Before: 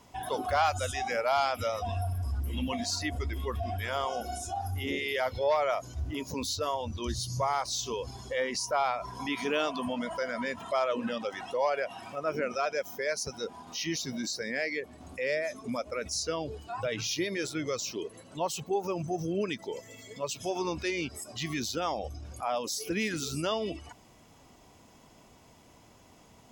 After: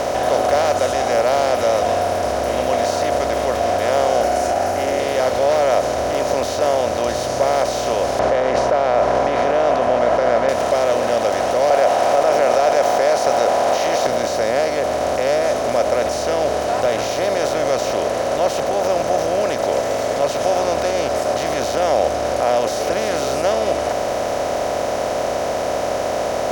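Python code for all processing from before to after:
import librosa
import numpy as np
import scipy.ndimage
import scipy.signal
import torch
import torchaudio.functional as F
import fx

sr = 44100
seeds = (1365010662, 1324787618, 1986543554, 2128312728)

y = fx.chain(x, sr, fx.fixed_phaser(hz=730.0, stages=8),
    fx.env_flatten(amount_pct=70), at=(4.23, 5.0))
y = fx.chain(y, sr, fx.lowpass(hz=1500.0, slope=24),
    fx.tilt_shelf(db=-4.0, hz=1100.0),
    fx.env_flatten(amount_pct=100), at=(8.19, 10.49))
y = fx.chain(y, sr, fx.highpass_res(hz=770.0, q=4.9),
    fx.tilt_eq(slope=-1.5),
    fx.env_flatten(amount_pct=50), at=(11.7, 14.07))
y = fx.bin_compress(y, sr, power=0.2)
y = fx.peak_eq(y, sr, hz=550.0, db=11.5, octaves=0.69)
y = F.gain(torch.from_numpy(y), -6.0).numpy()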